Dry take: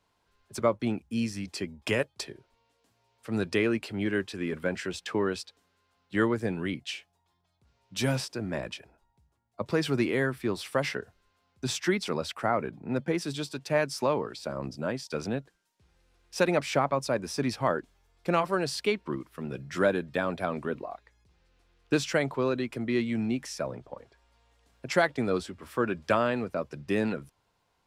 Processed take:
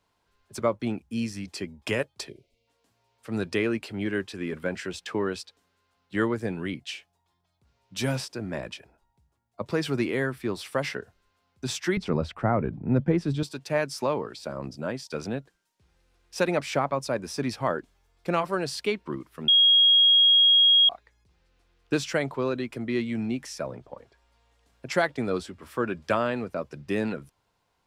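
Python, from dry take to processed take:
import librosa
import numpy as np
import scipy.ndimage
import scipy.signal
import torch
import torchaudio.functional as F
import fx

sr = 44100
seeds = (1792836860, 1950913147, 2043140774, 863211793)

y = fx.spec_box(x, sr, start_s=2.29, length_s=0.39, low_hz=700.0, high_hz=2000.0, gain_db=-22)
y = fx.riaa(y, sr, side='playback', at=(11.97, 13.43))
y = fx.edit(y, sr, fx.bleep(start_s=19.48, length_s=1.41, hz=3280.0, db=-14.5), tone=tone)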